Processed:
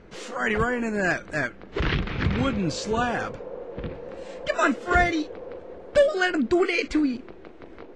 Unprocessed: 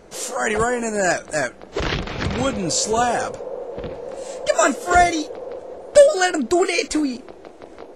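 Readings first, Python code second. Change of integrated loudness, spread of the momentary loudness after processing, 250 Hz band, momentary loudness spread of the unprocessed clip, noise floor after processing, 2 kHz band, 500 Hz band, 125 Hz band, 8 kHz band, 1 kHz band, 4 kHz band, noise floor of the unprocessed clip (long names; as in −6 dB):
−5.0 dB, 15 LU, −1.5 dB, 16 LU, −45 dBFS, −2.0 dB, −7.0 dB, +1.0 dB, −17.0 dB, −7.0 dB, −6.5 dB, −43 dBFS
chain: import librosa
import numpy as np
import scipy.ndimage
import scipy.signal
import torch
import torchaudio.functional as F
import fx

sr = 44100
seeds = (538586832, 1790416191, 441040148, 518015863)

y = scipy.signal.sosfilt(scipy.signal.butter(2, 2600.0, 'lowpass', fs=sr, output='sos'), x)
y = fx.peak_eq(y, sr, hz=670.0, db=-10.5, octaves=1.5)
y = y * 10.0 ** (1.5 / 20.0)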